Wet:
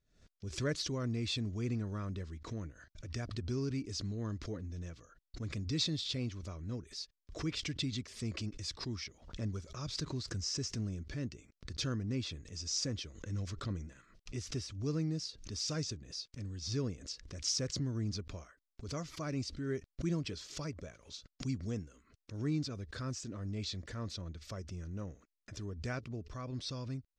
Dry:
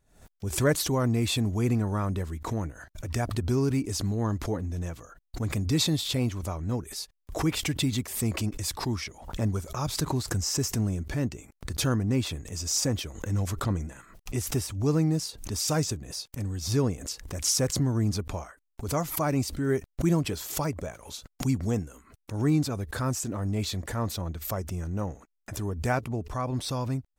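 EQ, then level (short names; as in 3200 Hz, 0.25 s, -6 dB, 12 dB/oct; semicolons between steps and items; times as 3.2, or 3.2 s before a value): ladder low-pass 6200 Hz, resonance 40%; bell 830 Hz -13 dB 0.55 oct; -2.0 dB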